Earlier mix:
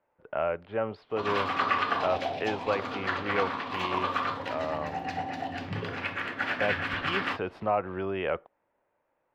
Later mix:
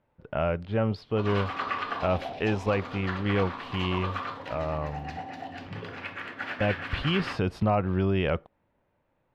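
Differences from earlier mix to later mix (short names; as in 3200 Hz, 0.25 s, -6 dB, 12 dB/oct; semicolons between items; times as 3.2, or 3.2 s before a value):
speech: remove three-band isolator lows -16 dB, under 340 Hz, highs -16 dB, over 2800 Hz; background -4.5 dB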